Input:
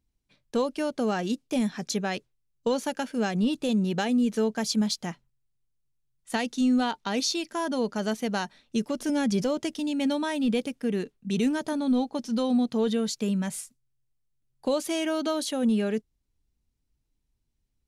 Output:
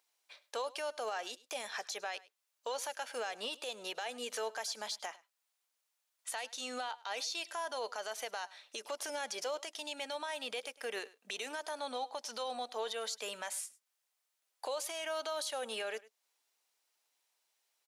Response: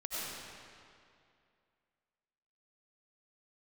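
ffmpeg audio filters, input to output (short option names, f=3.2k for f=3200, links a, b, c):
-af "highpass=f=610:w=0.5412,highpass=f=610:w=1.3066,acontrast=34,alimiter=level_in=10dB:limit=-24dB:level=0:latency=1:release=331,volume=-10dB,aecho=1:1:103:0.0944,volume=4.5dB"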